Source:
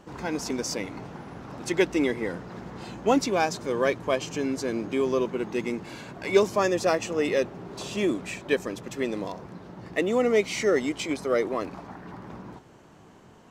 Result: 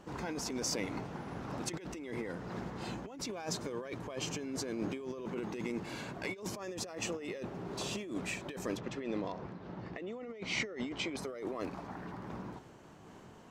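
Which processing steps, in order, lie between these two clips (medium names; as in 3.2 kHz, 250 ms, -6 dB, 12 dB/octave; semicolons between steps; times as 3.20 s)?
8.77–11.17 s: low-pass 4.3 kHz 12 dB/octave; compressor with a negative ratio -32 dBFS, ratio -1; random flutter of the level, depth 55%; trim -5 dB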